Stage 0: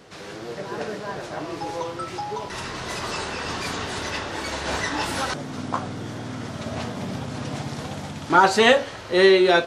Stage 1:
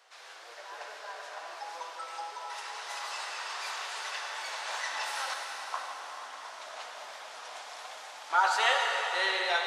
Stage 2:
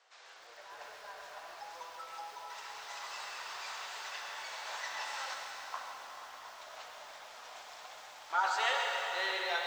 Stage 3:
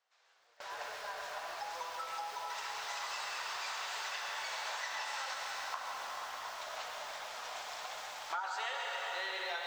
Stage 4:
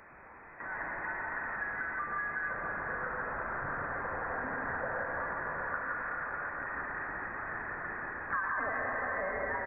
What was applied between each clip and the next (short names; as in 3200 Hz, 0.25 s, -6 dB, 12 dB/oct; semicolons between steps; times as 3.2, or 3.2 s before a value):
HPF 700 Hz 24 dB/oct; reverb RT60 4.5 s, pre-delay 60 ms, DRR 0.5 dB; gain -9 dB
steep low-pass 8300 Hz 72 dB/oct; lo-fi delay 0.133 s, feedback 55%, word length 8-bit, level -8 dB; gain -6 dB
gate with hold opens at -42 dBFS; bell 310 Hz -3 dB 0.96 oct; compressor 6:1, threshold -43 dBFS, peak gain reduction 16 dB; gain +6.5 dB
zero-crossing step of -49.5 dBFS; echo 0.168 s -6.5 dB; inverted band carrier 2500 Hz; gain +3.5 dB